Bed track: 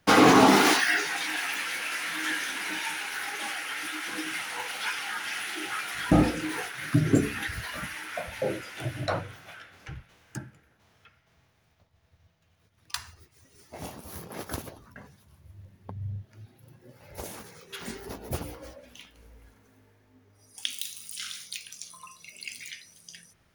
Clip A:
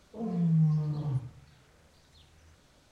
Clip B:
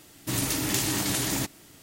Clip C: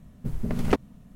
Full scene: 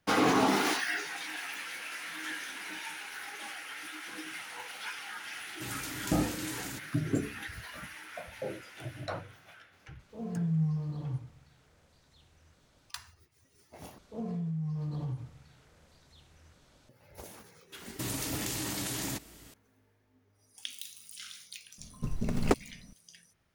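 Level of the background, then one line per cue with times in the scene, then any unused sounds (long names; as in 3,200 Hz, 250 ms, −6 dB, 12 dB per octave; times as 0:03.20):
bed track −8.5 dB
0:05.33: mix in B −13 dB + Butterworth band-reject 710 Hz, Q 5.1
0:09.99: mix in A −4 dB
0:13.98: overwrite with A −0.5 dB + downward compressor 12 to 1, threshold −31 dBFS
0:17.72: mix in B −2 dB + downward compressor 4 to 1, threshold −30 dBFS
0:21.78: mix in C −3.5 dB + short delay modulated by noise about 5,000 Hz, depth 0.034 ms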